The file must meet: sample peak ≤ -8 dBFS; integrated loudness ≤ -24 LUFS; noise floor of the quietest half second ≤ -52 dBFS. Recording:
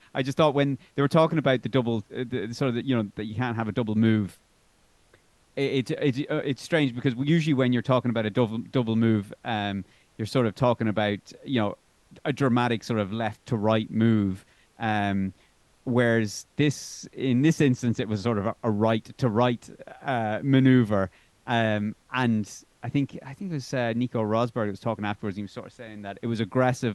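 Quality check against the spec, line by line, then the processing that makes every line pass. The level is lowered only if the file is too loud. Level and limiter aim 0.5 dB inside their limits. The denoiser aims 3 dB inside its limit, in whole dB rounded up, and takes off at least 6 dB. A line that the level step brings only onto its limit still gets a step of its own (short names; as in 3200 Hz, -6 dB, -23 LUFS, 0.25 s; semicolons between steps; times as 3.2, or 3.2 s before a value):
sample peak -7.0 dBFS: fail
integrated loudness -26.0 LUFS: OK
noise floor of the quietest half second -63 dBFS: OK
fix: limiter -8.5 dBFS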